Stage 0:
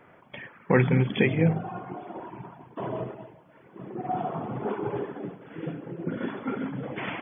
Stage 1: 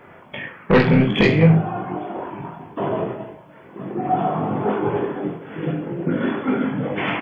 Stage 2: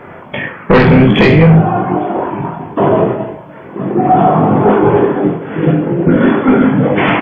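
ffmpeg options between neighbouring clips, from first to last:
-filter_complex "[0:a]aeval=exprs='0.501*sin(PI/2*2.24*val(0)/0.501)':c=same,asplit=2[s0][s1];[s1]aecho=0:1:20|43|69.45|99.87|134.8:0.631|0.398|0.251|0.158|0.1[s2];[s0][s2]amix=inputs=2:normalize=0,volume=0.708"
-af "apsyclip=5.62,highshelf=f=3200:g=-10.5,volume=0.841"

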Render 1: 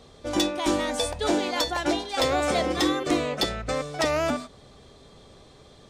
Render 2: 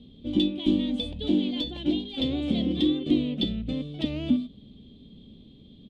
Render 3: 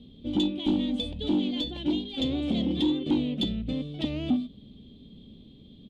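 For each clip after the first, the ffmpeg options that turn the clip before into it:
-af "firequalizer=gain_entry='entry(130,0);entry(220,12);entry(380,-6);entry(700,-19);entry(1400,-29);entry(3200,2);entry(5500,-27)':delay=0.05:min_phase=1"
-af "asoftclip=type=tanh:threshold=0.141"

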